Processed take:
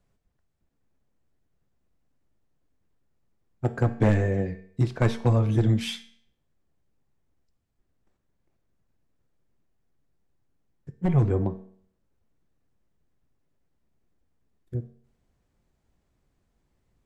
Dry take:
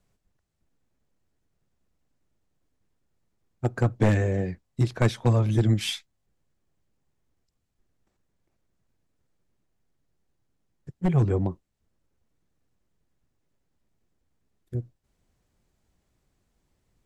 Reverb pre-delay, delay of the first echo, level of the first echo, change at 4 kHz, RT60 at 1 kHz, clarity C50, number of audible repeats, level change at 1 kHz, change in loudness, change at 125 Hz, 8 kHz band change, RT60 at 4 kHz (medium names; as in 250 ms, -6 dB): 4 ms, no echo, no echo, -3.5 dB, 0.60 s, 14.0 dB, no echo, 0.0 dB, 0.0 dB, 0.0 dB, no reading, 0.55 s